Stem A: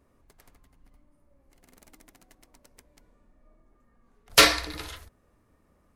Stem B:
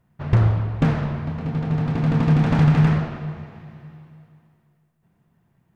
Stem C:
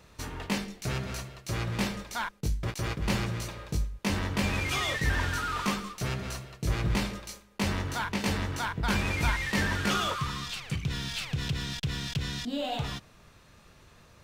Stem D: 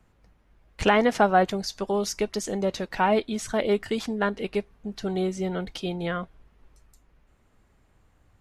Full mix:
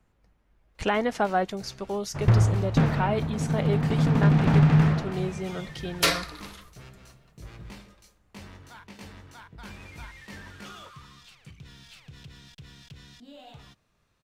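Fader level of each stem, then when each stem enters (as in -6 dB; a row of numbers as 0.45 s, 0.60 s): -6.5 dB, -2.5 dB, -15.5 dB, -5.0 dB; 1.65 s, 1.95 s, 0.75 s, 0.00 s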